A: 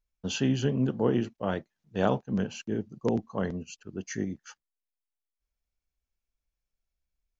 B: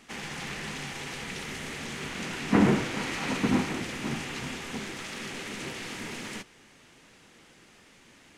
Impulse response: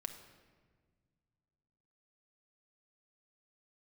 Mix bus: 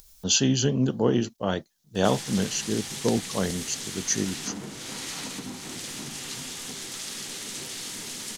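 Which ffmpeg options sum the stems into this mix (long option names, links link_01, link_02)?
-filter_complex "[0:a]volume=3dB[link_01];[1:a]acompressor=threshold=-31dB:ratio=5,flanger=delay=6.3:depth=1.5:regen=-74:speed=1.5:shape=triangular,adelay=1950,volume=0dB[link_02];[link_01][link_02]amix=inputs=2:normalize=0,acompressor=mode=upward:threshold=-41dB:ratio=2.5,aexciter=amount=4.4:drive=5.2:freq=3400"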